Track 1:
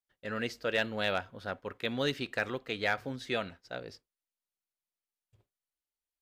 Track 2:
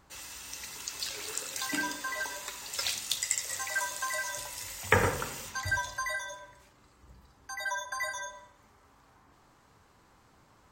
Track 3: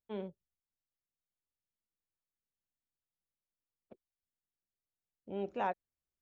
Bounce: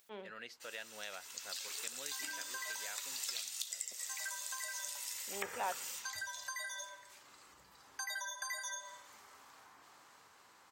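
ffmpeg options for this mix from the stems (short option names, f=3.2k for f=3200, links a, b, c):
-filter_complex "[0:a]volume=-9dB[a];[1:a]dynaudnorm=f=210:g=17:m=14dB,adynamicequalizer=threshold=0.0126:dfrequency=2800:dqfactor=0.7:tfrequency=2800:tqfactor=0.7:attack=5:release=100:ratio=0.375:range=3:mode=boostabove:tftype=highshelf,adelay=500,volume=-8dB[b];[2:a]aeval=exprs='if(lt(val(0),0),0.708*val(0),val(0))':c=same,volume=2.5dB[c];[a][b]amix=inputs=2:normalize=0,acompressor=threshold=-38dB:ratio=8,volume=0dB[d];[c][d]amix=inputs=2:normalize=0,acompressor=mode=upward:threshold=-49dB:ratio=2.5,highpass=f=1.1k:p=1"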